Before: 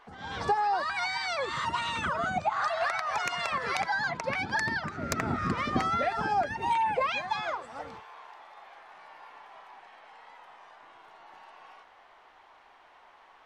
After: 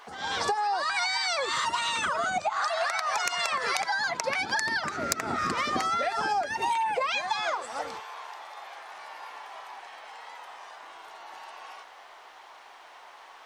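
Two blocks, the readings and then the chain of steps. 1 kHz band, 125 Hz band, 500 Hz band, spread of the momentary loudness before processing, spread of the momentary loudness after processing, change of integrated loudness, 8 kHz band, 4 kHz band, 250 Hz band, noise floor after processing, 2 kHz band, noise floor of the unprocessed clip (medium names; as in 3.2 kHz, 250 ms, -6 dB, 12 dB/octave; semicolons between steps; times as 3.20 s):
+1.0 dB, -8.5 dB, +1.0 dB, 15 LU, 17 LU, +2.0 dB, +9.5 dB, +6.5 dB, -4.0 dB, -50 dBFS, +2.5 dB, -57 dBFS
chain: tone controls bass -13 dB, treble +10 dB; compression, threshold -32 dBFS, peak gain reduction 12 dB; trim +7 dB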